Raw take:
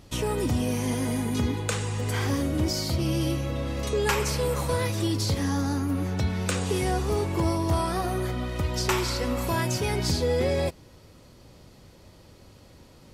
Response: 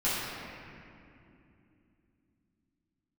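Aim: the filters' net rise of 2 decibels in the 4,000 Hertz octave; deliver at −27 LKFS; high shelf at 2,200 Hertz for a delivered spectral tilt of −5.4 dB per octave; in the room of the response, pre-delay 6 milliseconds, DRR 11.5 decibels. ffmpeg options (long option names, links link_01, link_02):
-filter_complex "[0:a]highshelf=frequency=2200:gain=-5.5,equalizer=frequency=4000:width_type=o:gain=8,asplit=2[link_01][link_02];[1:a]atrim=start_sample=2205,adelay=6[link_03];[link_02][link_03]afir=irnorm=-1:irlink=0,volume=-22.5dB[link_04];[link_01][link_04]amix=inputs=2:normalize=0,volume=-0.5dB"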